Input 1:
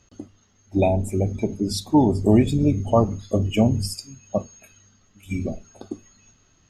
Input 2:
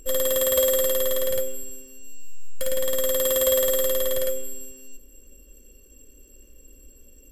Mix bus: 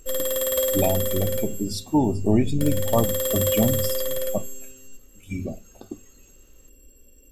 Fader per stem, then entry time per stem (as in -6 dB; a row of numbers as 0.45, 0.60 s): -3.5, -2.5 dB; 0.00, 0.00 s